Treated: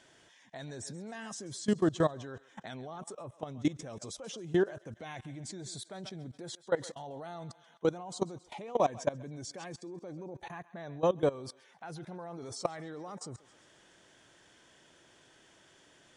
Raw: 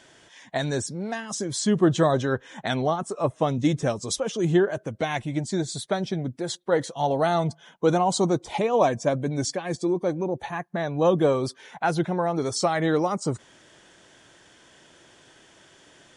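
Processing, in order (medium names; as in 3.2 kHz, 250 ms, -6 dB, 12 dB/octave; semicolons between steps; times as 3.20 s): thinning echo 134 ms, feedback 53%, high-pass 730 Hz, level -16.5 dB; level held to a coarse grid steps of 19 dB; trim -5 dB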